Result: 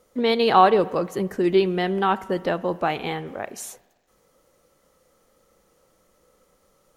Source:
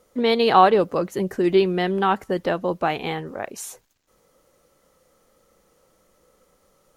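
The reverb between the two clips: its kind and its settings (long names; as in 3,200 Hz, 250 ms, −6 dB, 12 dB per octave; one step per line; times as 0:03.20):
spring reverb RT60 1.3 s, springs 40/58 ms, chirp 70 ms, DRR 17.5 dB
level −1 dB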